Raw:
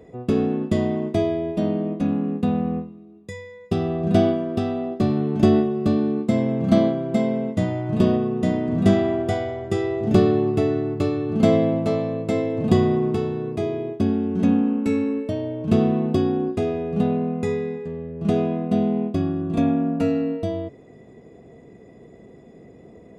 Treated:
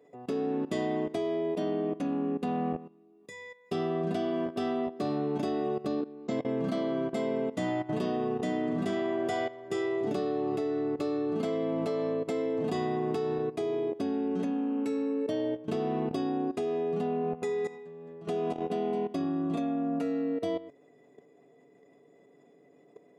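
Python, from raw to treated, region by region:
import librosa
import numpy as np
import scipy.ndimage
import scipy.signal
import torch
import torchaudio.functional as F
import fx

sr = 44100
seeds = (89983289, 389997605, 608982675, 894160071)

y = fx.chain(x, sr, fx.low_shelf(hz=480.0, db=2.0),
    fx.level_steps(step_db=19),
    fx.resample_bad(factor=3, down='none', up='filtered'), at=(5.87, 6.45))
y = fx.chain(y, sr, fx.hum_notches(base_hz=50, count=6),
    fx.echo_single(ms=216, db=-10.5), at=(17.21, 19.25))
y = scipy.signal.sosfilt(scipy.signal.butter(2, 290.0, 'highpass', fs=sr, output='sos'), y)
y = y + 0.53 * np.pad(y, (int(7.0 * sr / 1000.0), 0))[:len(y)]
y = fx.level_steps(y, sr, step_db=15)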